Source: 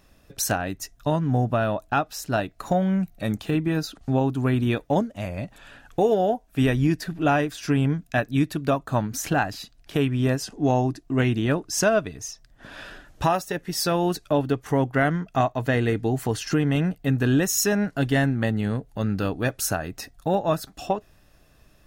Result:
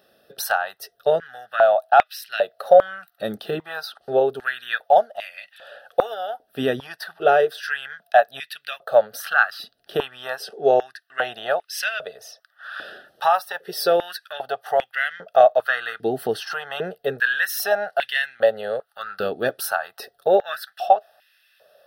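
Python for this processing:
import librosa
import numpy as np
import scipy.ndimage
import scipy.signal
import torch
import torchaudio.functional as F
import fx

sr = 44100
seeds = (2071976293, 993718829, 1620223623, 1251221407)

y = fx.fixed_phaser(x, sr, hz=1500.0, stages=8)
y = fx.filter_held_highpass(y, sr, hz=2.5, low_hz=310.0, high_hz=2200.0)
y = y * librosa.db_to_amplitude(3.5)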